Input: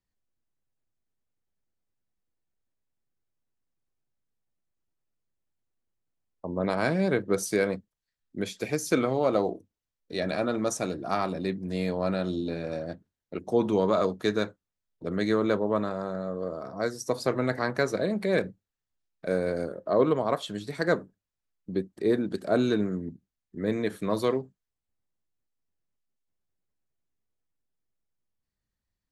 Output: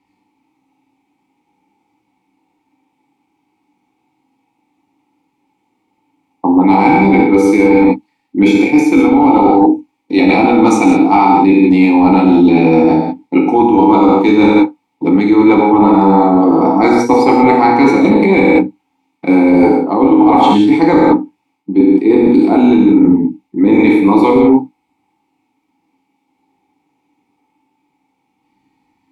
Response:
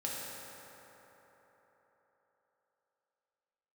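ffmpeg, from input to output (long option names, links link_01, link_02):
-filter_complex "[0:a]asplit=3[link_01][link_02][link_03];[link_01]bandpass=frequency=300:width_type=q:width=8,volume=0dB[link_04];[link_02]bandpass=frequency=870:width_type=q:width=8,volume=-6dB[link_05];[link_03]bandpass=frequency=2240:width_type=q:width=8,volume=-9dB[link_06];[link_04][link_05][link_06]amix=inputs=3:normalize=0,equalizer=frequency=780:width_type=o:width=1.5:gain=6.5,bandreject=frequency=1200:width=26,asplit=2[link_07][link_08];[link_08]adynamicsmooth=sensitivity=3:basefreq=4500,volume=-1dB[link_09];[link_07][link_09]amix=inputs=2:normalize=0[link_10];[1:a]atrim=start_sample=2205,afade=type=out:start_time=0.24:duration=0.01,atrim=end_sample=11025,asetrate=42777,aresample=44100[link_11];[link_10][link_11]afir=irnorm=-1:irlink=0,crystalizer=i=3.5:c=0,areverse,acompressor=threshold=-37dB:ratio=12,areverse,apsyclip=34.5dB,volume=-1.5dB"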